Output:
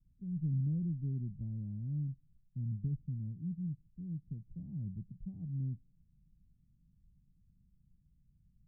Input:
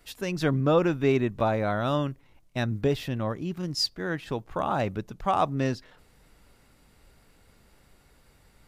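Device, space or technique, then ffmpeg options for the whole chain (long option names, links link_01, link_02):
the neighbour's flat through the wall: -af "lowpass=frequency=180:width=0.5412,lowpass=frequency=180:width=1.3066,equalizer=frequency=170:width_type=o:width=0.69:gain=6.5,volume=-8dB"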